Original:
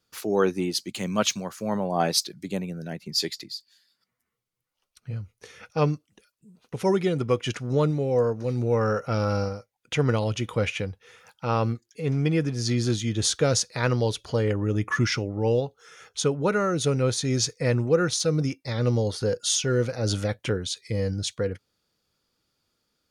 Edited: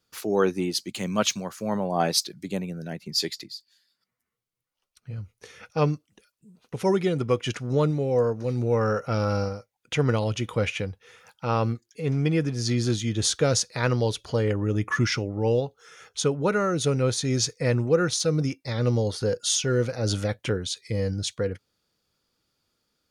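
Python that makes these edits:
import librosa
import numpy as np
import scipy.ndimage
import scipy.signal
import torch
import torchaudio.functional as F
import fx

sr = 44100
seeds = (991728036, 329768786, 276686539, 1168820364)

y = fx.edit(x, sr, fx.clip_gain(start_s=3.47, length_s=1.71, db=-3.0), tone=tone)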